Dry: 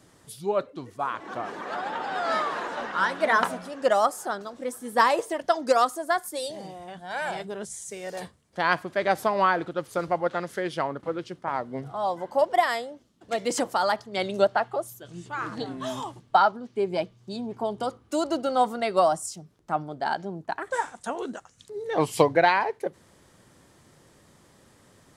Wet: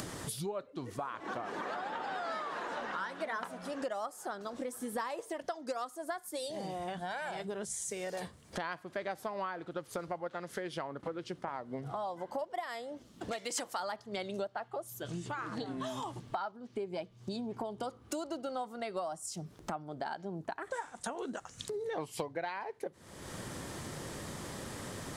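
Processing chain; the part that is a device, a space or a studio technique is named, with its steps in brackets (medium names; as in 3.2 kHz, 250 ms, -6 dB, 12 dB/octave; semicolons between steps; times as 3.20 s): upward and downward compression (upward compressor, threshold -25 dBFS; compression 6:1, threshold -33 dBFS, peak gain reduction 18 dB); 13.33–13.80 s: tilt shelf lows -6 dB, about 760 Hz; trim -2.5 dB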